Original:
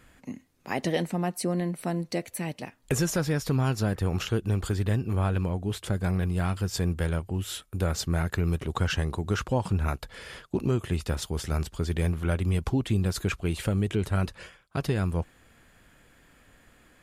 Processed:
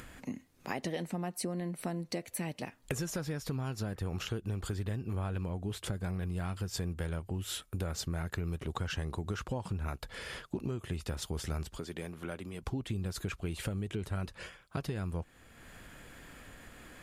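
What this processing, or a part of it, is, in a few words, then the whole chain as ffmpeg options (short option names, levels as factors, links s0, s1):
upward and downward compression: -filter_complex "[0:a]acompressor=mode=upward:threshold=0.00708:ratio=2.5,acompressor=threshold=0.0224:ratio=6,asettb=1/sr,asplit=3[s0][s1][s2];[s0]atrim=end=11.784[s3];[s1]atrim=start=11.78:end=12.63,asetpts=PTS-STARTPTS,afade=t=in:d=0.004:c=qsin,afade=t=out:st=0.846:d=0.004:c=qsin,highpass=200[s4];[s2]atrim=start=12.626[s5];[s3][s4]acrossfade=d=0.004:c1=hsin:c2=qsin[s6];[s6][s5]acrossfade=d=0.004:c1=qsin:c2=hsin"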